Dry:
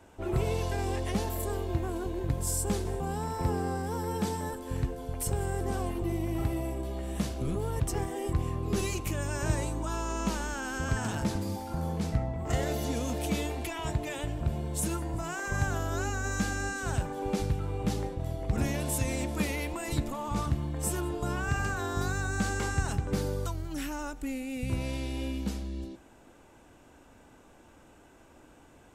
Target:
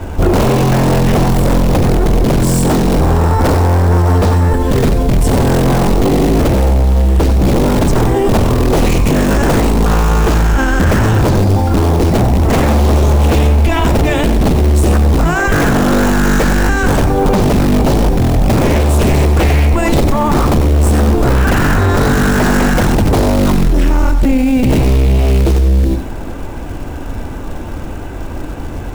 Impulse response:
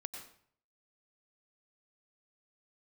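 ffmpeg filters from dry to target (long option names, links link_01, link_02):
-filter_complex "[0:a]aemphasis=mode=reproduction:type=bsi,bandreject=frequency=60:width_type=h:width=6,bandreject=frequency=120:width_type=h:width=6,bandreject=frequency=180:width_type=h:width=6,bandreject=frequency=240:width_type=h:width=6,asplit=2[link_01][link_02];[link_02]acontrast=71,volume=-2dB[link_03];[link_01][link_03]amix=inputs=2:normalize=0,acrusher=bits=6:mode=log:mix=0:aa=0.000001,aeval=exprs='1.12*sin(PI/2*6.31*val(0)/1.12)':channel_layout=same[link_04];[1:a]atrim=start_sample=2205,atrim=end_sample=4410[link_05];[link_04][link_05]afir=irnorm=-1:irlink=0,alimiter=level_in=6dB:limit=-1dB:release=50:level=0:latency=1,volume=-4.5dB"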